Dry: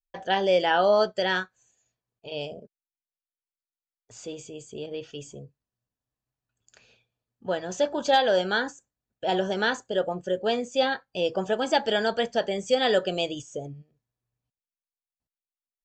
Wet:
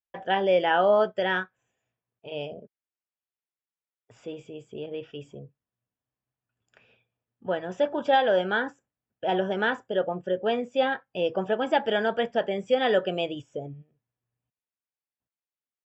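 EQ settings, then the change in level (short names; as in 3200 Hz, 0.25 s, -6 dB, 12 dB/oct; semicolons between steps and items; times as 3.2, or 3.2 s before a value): polynomial smoothing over 25 samples; HPF 80 Hz; 0.0 dB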